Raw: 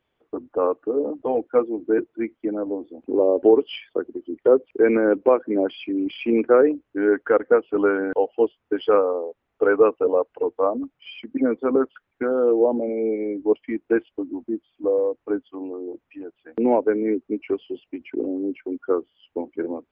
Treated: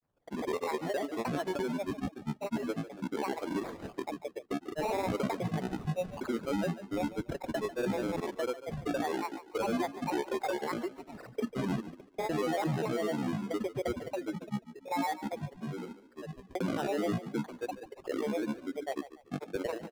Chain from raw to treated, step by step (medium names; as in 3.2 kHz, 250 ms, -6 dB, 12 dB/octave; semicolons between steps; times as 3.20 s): sample-rate reducer 1.7 kHz, jitter 0%; tone controls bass +5 dB, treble +2 dB; peak limiter -16 dBFS, peak gain reduction 12.5 dB; granulator, pitch spread up and down by 12 st; treble shelf 2.7 kHz -10 dB; frequency-shifting echo 144 ms, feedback 31%, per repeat +30 Hz, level -14.5 dB; trim -6.5 dB